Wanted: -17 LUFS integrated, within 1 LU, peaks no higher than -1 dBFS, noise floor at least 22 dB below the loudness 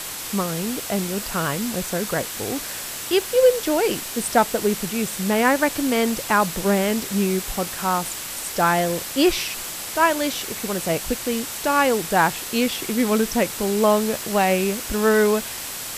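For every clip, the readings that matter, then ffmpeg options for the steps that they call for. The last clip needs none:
steady tone 7700 Hz; tone level -41 dBFS; noise floor -32 dBFS; noise floor target -44 dBFS; loudness -21.5 LUFS; peak -4.5 dBFS; loudness target -17.0 LUFS
-> -af "bandreject=f=7.7k:w=30"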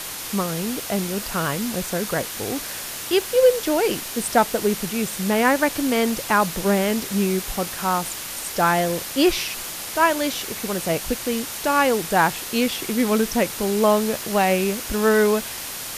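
steady tone none; noise floor -32 dBFS; noise floor target -44 dBFS
-> -af "afftdn=nr=12:nf=-32"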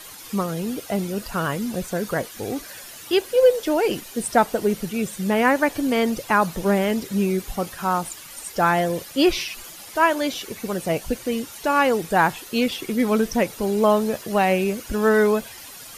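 noise floor -41 dBFS; noise floor target -45 dBFS
-> -af "afftdn=nr=6:nf=-41"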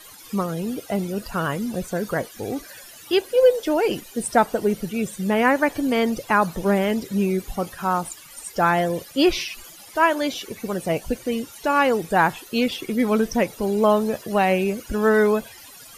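noise floor -44 dBFS; noise floor target -45 dBFS
-> -af "afftdn=nr=6:nf=-44"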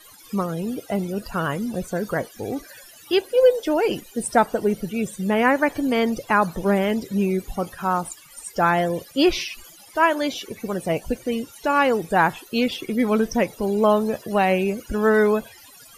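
noise floor -47 dBFS; loudness -22.5 LUFS; peak -5.0 dBFS; loudness target -17.0 LUFS
-> -af "volume=5.5dB,alimiter=limit=-1dB:level=0:latency=1"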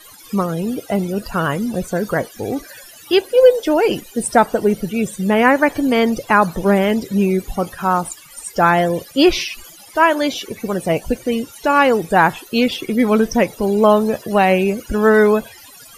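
loudness -17.0 LUFS; peak -1.0 dBFS; noise floor -42 dBFS

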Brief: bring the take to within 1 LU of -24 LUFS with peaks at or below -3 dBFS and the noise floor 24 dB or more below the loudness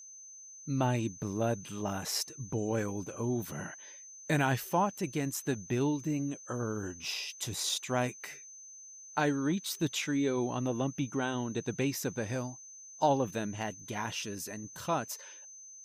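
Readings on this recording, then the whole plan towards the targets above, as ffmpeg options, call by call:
steady tone 6200 Hz; tone level -48 dBFS; loudness -33.5 LUFS; peak -14.5 dBFS; loudness target -24.0 LUFS
-> -af "bandreject=f=6.2k:w=30"
-af "volume=9.5dB"

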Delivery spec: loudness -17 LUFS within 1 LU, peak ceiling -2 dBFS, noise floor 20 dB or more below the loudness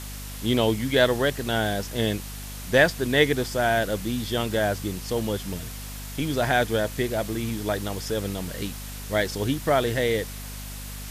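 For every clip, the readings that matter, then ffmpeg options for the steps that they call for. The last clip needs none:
hum 50 Hz; harmonics up to 250 Hz; hum level -35 dBFS; noise floor -36 dBFS; noise floor target -45 dBFS; loudness -25.0 LUFS; peak -5.5 dBFS; loudness target -17.0 LUFS
-> -af "bandreject=f=50:t=h:w=6,bandreject=f=100:t=h:w=6,bandreject=f=150:t=h:w=6,bandreject=f=200:t=h:w=6,bandreject=f=250:t=h:w=6"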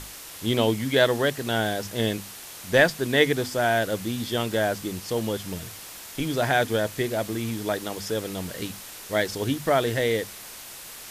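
hum none; noise floor -42 dBFS; noise floor target -46 dBFS
-> -af "afftdn=nr=6:nf=-42"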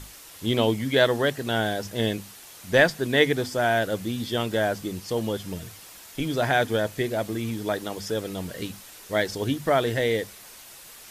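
noise floor -46 dBFS; loudness -25.5 LUFS; peak -5.5 dBFS; loudness target -17.0 LUFS
-> -af "volume=8.5dB,alimiter=limit=-2dB:level=0:latency=1"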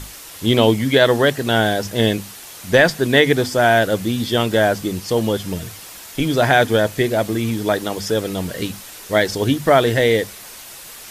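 loudness -17.5 LUFS; peak -2.0 dBFS; noise floor -38 dBFS

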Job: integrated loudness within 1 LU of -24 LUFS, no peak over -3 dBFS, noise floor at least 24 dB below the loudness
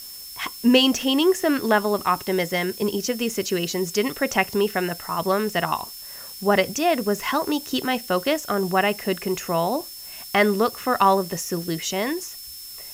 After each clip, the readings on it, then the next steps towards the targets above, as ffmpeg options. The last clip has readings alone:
steady tone 5300 Hz; tone level -40 dBFS; noise floor -39 dBFS; noise floor target -47 dBFS; loudness -22.5 LUFS; peak -3.0 dBFS; loudness target -24.0 LUFS
-> -af "bandreject=f=5.3k:w=30"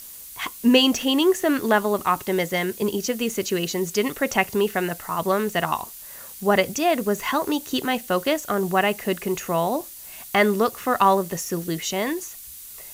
steady tone none; noise floor -41 dBFS; noise floor target -47 dBFS
-> -af "afftdn=nr=6:nf=-41"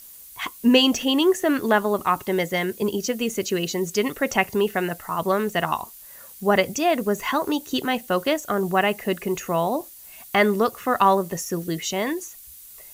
noise floor -44 dBFS; noise floor target -47 dBFS
-> -af "afftdn=nr=6:nf=-44"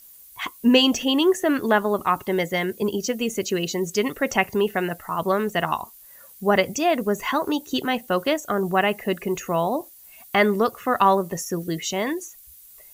noise floor -48 dBFS; loudness -23.0 LUFS; peak -3.0 dBFS; loudness target -24.0 LUFS
-> -af "volume=-1dB"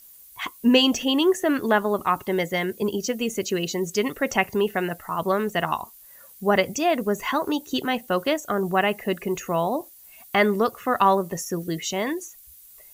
loudness -24.0 LUFS; peak -4.0 dBFS; noise floor -49 dBFS

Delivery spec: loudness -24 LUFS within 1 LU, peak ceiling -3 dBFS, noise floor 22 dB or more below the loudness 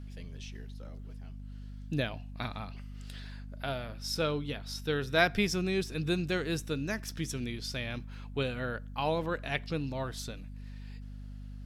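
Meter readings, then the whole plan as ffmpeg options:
hum 50 Hz; harmonics up to 250 Hz; hum level -41 dBFS; loudness -33.5 LUFS; peak -10.5 dBFS; loudness target -24.0 LUFS
-> -af "bandreject=f=50:t=h:w=6,bandreject=f=100:t=h:w=6,bandreject=f=150:t=h:w=6,bandreject=f=200:t=h:w=6,bandreject=f=250:t=h:w=6"
-af "volume=9.5dB,alimiter=limit=-3dB:level=0:latency=1"

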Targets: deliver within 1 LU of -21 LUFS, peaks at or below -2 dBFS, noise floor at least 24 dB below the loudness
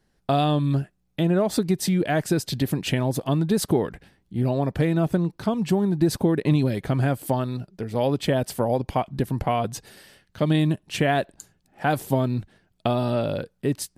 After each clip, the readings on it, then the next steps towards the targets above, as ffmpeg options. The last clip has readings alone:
loudness -24.5 LUFS; peak -8.0 dBFS; loudness target -21.0 LUFS
-> -af "volume=3.5dB"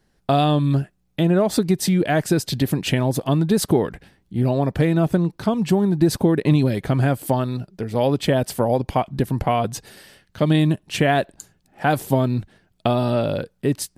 loudness -21.0 LUFS; peak -4.5 dBFS; noise floor -66 dBFS

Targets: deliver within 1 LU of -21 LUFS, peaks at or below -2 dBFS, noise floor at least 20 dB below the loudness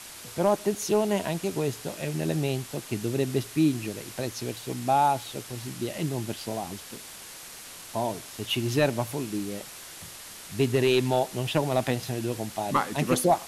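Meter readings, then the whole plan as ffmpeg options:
noise floor -44 dBFS; noise floor target -48 dBFS; loudness -28.0 LUFS; peak -12.5 dBFS; loudness target -21.0 LUFS
-> -af "afftdn=nr=6:nf=-44"
-af "volume=7dB"

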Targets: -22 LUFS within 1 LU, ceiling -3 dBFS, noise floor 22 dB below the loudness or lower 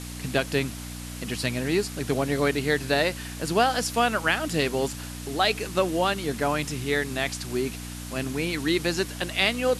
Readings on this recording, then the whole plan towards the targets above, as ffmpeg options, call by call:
hum 60 Hz; harmonics up to 300 Hz; hum level -35 dBFS; noise floor -37 dBFS; noise floor target -48 dBFS; loudness -26.0 LUFS; peak -8.5 dBFS; loudness target -22.0 LUFS
-> -af "bandreject=f=60:t=h:w=4,bandreject=f=120:t=h:w=4,bandreject=f=180:t=h:w=4,bandreject=f=240:t=h:w=4,bandreject=f=300:t=h:w=4"
-af "afftdn=nr=11:nf=-37"
-af "volume=4dB"

